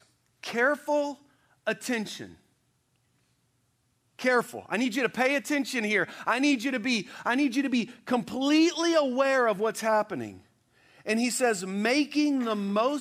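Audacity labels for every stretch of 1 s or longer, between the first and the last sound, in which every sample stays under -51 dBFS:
2.370000	4.190000	silence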